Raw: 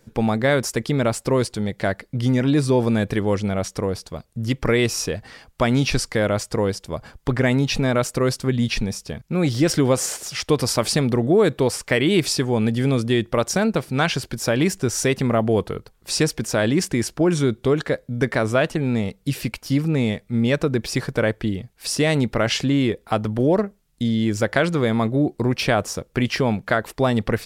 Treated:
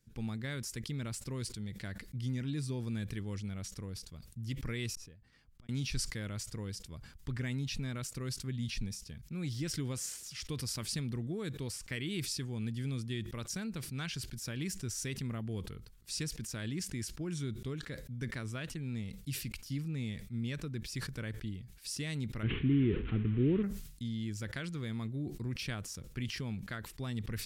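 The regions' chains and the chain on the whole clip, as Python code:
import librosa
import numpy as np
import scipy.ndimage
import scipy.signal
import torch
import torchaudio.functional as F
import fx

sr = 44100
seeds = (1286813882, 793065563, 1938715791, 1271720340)

y = fx.chain(x, sr, fx.block_float(bits=7),
    fx.high_shelf(hz=2100.0, db=-10.5),
    fx.gate_flip(shuts_db=-26.0, range_db=-39), at=(4.95, 5.69))
y = fx.chain(y, sr, fx.delta_mod(bps=16000, step_db=-23.5),
    fx.low_shelf_res(hz=500.0, db=7.5, q=3.0), at=(22.43, 23.63))
y = fx.tone_stack(y, sr, knobs='6-0-2')
y = fx.sustainer(y, sr, db_per_s=71.0)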